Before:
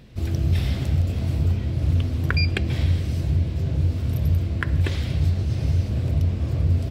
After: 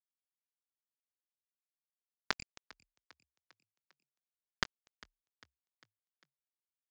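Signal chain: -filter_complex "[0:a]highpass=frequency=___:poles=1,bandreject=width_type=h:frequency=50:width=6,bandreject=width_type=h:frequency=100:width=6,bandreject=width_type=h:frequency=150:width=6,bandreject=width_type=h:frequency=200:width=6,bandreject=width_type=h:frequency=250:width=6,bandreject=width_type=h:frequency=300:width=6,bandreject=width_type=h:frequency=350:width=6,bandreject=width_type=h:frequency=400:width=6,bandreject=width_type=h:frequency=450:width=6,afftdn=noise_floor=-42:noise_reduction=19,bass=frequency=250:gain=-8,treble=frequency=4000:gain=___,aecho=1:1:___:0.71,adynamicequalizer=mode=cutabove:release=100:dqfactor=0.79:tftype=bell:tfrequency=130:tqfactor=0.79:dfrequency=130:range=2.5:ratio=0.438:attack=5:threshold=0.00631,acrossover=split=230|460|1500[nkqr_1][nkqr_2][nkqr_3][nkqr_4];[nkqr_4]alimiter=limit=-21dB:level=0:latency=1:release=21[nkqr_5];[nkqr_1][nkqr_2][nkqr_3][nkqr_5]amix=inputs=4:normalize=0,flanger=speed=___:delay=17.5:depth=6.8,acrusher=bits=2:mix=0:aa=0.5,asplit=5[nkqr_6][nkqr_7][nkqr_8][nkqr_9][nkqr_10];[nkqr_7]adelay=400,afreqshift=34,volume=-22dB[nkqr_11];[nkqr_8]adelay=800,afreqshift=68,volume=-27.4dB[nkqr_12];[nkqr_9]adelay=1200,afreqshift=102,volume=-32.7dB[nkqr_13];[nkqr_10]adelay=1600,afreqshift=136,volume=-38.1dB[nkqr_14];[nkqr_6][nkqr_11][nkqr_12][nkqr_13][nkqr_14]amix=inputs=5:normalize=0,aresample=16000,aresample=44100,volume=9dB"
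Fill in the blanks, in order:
66, -2, 5, 0.74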